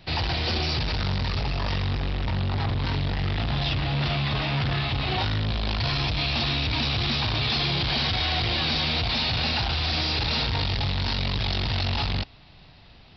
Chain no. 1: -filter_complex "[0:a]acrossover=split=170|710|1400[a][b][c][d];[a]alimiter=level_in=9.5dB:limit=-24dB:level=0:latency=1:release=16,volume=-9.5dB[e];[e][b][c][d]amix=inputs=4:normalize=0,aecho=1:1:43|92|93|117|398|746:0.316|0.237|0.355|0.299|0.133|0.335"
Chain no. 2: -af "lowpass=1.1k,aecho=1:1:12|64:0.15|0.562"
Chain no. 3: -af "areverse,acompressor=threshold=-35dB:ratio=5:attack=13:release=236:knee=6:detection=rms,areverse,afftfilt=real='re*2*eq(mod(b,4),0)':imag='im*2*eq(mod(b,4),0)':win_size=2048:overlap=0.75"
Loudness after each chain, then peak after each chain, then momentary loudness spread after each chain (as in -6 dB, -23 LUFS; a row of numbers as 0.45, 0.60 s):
-24.5, -26.5, -38.0 LUFS; -11.5, -16.5, -26.0 dBFS; 7, 3, 4 LU